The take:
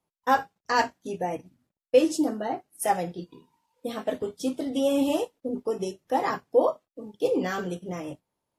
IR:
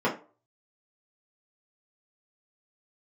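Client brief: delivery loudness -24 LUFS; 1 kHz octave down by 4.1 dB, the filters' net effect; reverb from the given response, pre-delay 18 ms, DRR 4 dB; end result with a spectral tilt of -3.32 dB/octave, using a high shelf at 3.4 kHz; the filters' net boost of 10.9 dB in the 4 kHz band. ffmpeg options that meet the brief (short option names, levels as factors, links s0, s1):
-filter_complex "[0:a]equalizer=f=1000:t=o:g=-6.5,highshelf=f=3400:g=8.5,equalizer=f=4000:t=o:g=8.5,asplit=2[s0][s1];[1:a]atrim=start_sample=2205,adelay=18[s2];[s1][s2]afir=irnorm=-1:irlink=0,volume=0.133[s3];[s0][s3]amix=inputs=2:normalize=0,volume=1.06"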